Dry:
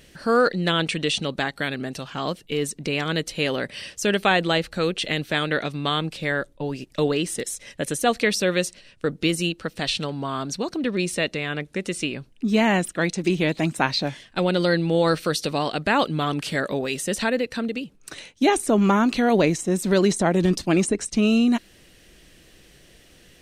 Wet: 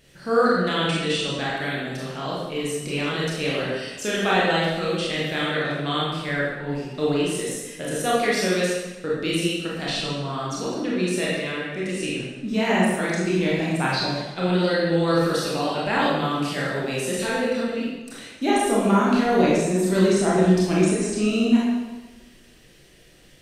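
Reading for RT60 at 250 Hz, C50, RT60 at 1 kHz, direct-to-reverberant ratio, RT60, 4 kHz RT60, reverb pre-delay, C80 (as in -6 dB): 1.3 s, -1.5 dB, 1.2 s, -6.5 dB, 1.2 s, 0.95 s, 24 ms, 1.5 dB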